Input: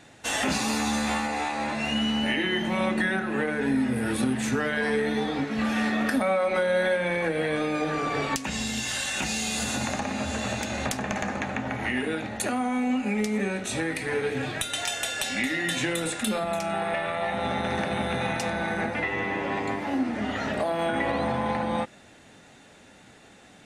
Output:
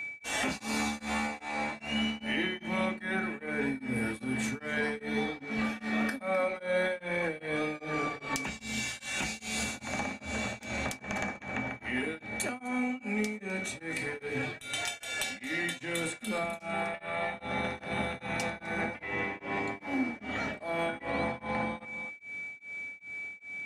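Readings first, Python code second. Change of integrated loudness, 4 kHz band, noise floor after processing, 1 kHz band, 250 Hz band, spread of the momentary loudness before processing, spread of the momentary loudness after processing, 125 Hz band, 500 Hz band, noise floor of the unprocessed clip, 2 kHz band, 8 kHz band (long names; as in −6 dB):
−6.5 dB, −7.5 dB, −52 dBFS, −7.5 dB, −7.5 dB, 4 LU, 4 LU, −7.5 dB, −7.5 dB, −52 dBFS, −4.0 dB, −7.5 dB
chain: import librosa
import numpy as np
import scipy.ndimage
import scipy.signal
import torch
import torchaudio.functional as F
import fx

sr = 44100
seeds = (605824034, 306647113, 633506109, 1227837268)

y = x + 10.0 ** (-30.0 / 20.0) * np.sin(2.0 * np.pi * 2300.0 * np.arange(len(x)) / sr)
y = y + 10.0 ** (-16.0 / 20.0) * np.pad(y, (int(255 * sr / 1000.0), 0))[:len(y)]
y = y * np.abs(np.cos(np.pi * 2.5 * np.arange(len(y)) / sr))
y = y * librosa.db_to_amplitude(-4.5)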